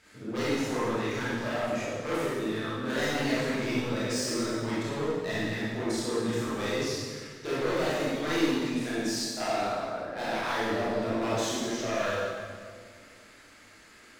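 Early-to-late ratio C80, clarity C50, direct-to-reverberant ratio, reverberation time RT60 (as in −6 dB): −0.5 dB, −4.0 dB, −9.5 dB, 1.9 s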